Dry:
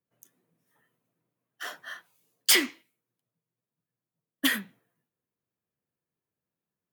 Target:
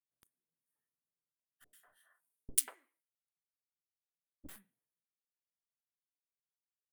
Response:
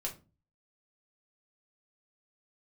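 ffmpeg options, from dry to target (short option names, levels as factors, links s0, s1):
-filter_complex "[0:a]highshelf=f=7200:t=q:w=3:g=10,acompressor=threshold=0.141:ratio=5,aeval=exprs='0.668*(cos(1*acos(clip(val(0)/0.668,-1,1)))-cos(1*PI/2))+0.237*(cos(3*acos(clip(val(0)/0.668,-1,1)))-cos(3*PI/2))+0.015*(cos(6*acos(clip(val(0)/0.668,-1,1)))-cos(6*PI/2))':c=same,asettb=1/sr,asplit=3[s0][s1][s2];[s0]atrim=end=1.644[s3];[s1]atrim=start=1.64:end=4.49,asetpts=PTS-STARTPTS,afade=t=in:d=0.004:c=qsin,afade=t=out:st=2.846:d=0.004:c=qsin,acrossover=split=410|1900[s4][s5][s6];[s6]adelay=90[s7];[s5]adelay=190[s8];[s4][s8][s7]amix=inputs=3:normalize=0,atrim=end_sample=125685[s9];[s2]atrim=start=4.486[s10];[s3][s9]acrossfade=d=0.004:c1=hsin:c2=qsin[s11];[s11][s10]acrossfade=d=0.004:c1=qsin:c2=hsin,volume=0.668"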